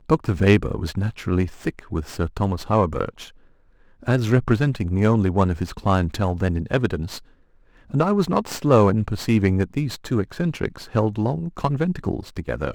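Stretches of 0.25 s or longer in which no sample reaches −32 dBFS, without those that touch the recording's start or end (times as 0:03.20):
0:03.27–0:04.03
0:07.18–0:07.94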